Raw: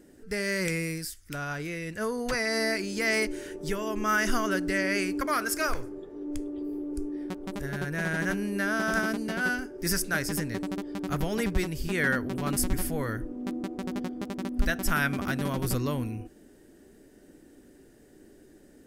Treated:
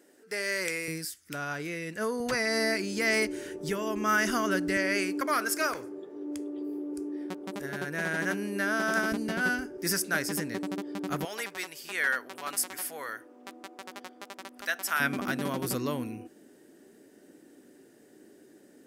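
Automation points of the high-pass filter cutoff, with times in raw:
450 Hz
from 0:00.88 180 Hz
from 0:02.20 83 Hz
from 0:04.77 230 Hz
from 0:09.12 54 Hz
from 0:09.78 200 Hz
from 0:11.25 770 Hz
from 0:15.00 200 Hz

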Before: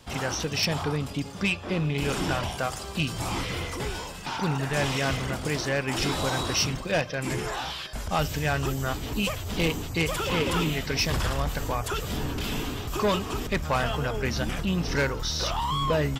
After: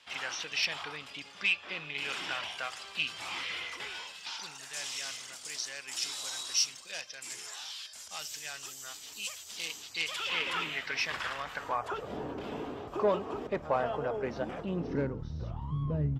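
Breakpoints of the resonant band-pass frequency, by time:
resonant band-pass, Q 1.2
0:04.00 2,600 Hz
0:04.54 6,700 Hz
0:09.58 6,700 Hz
0:10.62 1,900 Hz
0:11.43 1,900 Hz
0:12.10 570 Hz
0:14.64 570 Hz
0:15.35 120 Hz

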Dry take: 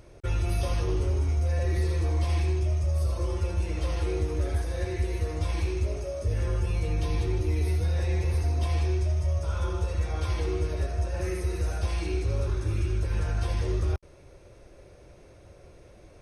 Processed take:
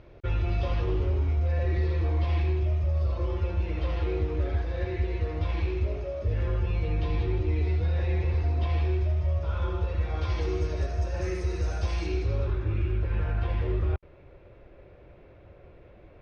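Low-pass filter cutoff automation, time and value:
low-pass filter 24 dB per octave
0:10.04 3,800 Hz
0:10.56 6,400 Hz
0:12.03 6,400 Hz
0:12.63 3,100 Hz

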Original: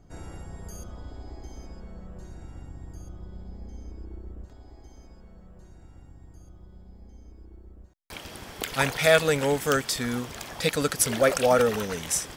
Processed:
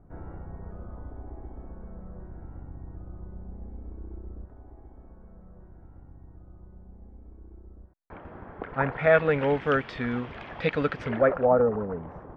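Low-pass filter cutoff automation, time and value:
low-pass filter 24 dB per octave
0:08.72 1,500 Hz
0:09.49 2,700 Hz
0:10.96 2,700 Hz
0:11.54 1,100 Hz

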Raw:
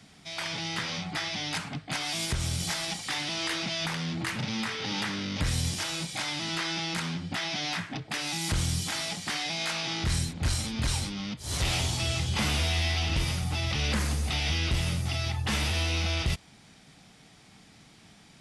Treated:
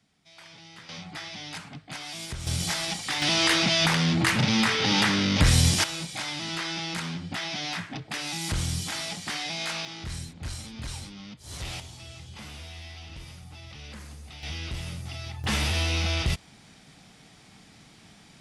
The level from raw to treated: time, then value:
−15 dB
from 0:00.89 −6 dB
from 0:02.47 +2.5 dB
from 0:03.22 +9 dB
from 0:05.84 −0.5 dB
from 0:09.85 −8 dB
from 0:11.80 −15 dB
from 0:14.43 −7 dB
from 0:15.44 +2 dB

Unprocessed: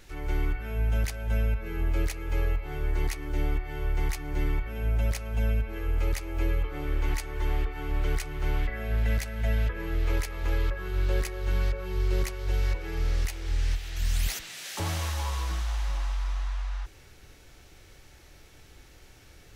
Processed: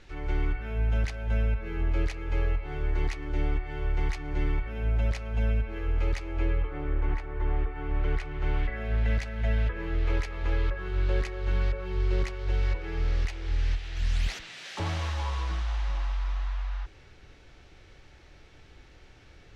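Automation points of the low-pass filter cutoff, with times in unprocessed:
0:06.24 4,300 Hz
0:06.97 1,700 Hz
0:07.52 1,700 Hz
0:08.81 4,100 Hz

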